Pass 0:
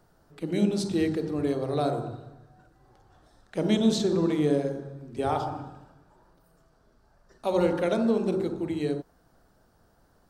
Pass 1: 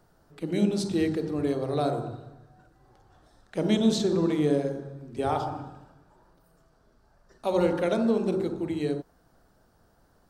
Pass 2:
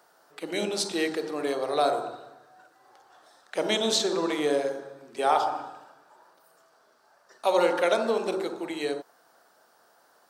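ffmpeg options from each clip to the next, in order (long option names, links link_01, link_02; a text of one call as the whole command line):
ffmpeg -i in.wav -af anull out.wav
ffmpeg -i in.wav -af "highpass=630,volume=7.5dB" out.wav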